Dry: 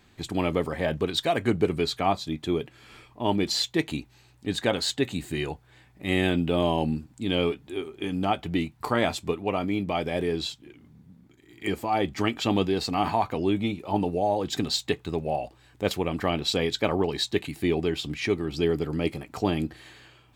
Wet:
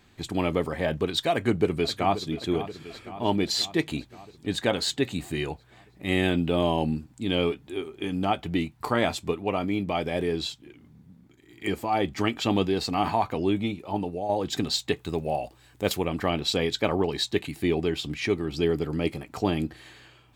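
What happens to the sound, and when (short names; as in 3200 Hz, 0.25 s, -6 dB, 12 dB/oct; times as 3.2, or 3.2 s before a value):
1.31–2.29 echo throw 0.53 s, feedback 65%, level -13 dB
13.51–14.29 fade out, to -7 dB
14.96–16.05 high shelf 7600 Hz +9 dB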